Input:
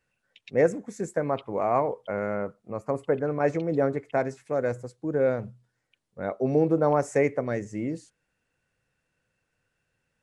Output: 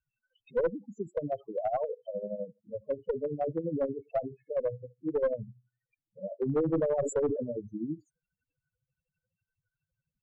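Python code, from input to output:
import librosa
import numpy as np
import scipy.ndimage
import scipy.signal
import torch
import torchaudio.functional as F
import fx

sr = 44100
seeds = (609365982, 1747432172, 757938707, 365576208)

y = fx.spec_topn(x, sr, count=4)
y = y * (1.0 - 0.72 / 2.0 + 0.72 / 2.0 * np.cos(2.0 * np.pi * 12.0 * (np.arange(len(y)) / sr)))
y = fx.clip_asym(y, sr, top_db=-24.5, bottom_db=-20.0)
y = fx.env_lowpass_down(y, sr, base_hz=1600.0, full_db=-27.0)
y = fx.sustainer(y, sr, db_per_s=62.0, at=(6.44, 7.46), fade=0.02)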